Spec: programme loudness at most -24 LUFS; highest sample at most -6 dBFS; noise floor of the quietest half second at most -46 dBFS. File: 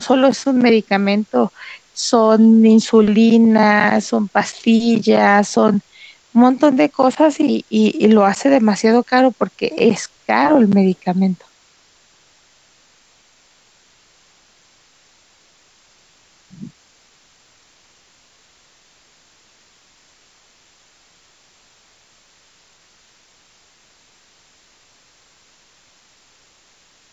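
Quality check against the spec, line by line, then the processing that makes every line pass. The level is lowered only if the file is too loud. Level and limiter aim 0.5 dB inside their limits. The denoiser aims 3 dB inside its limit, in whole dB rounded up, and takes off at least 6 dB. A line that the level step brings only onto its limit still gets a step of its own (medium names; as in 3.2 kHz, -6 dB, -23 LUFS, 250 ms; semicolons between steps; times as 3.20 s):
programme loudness -14.0 LUFS: fail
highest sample -2.0 dBFS: fail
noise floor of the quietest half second -54 dBFS: pass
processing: trim -10.5 dB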